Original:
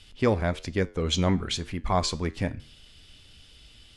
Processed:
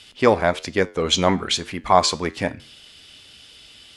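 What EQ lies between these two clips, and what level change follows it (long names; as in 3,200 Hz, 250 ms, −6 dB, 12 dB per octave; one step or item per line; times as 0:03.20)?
dynamic equaliser 830 Hz, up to +4 dB, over −35 dBFS, Q 1.1
high-pass filter 370 Hz 6 dB per octave
+8.5 dB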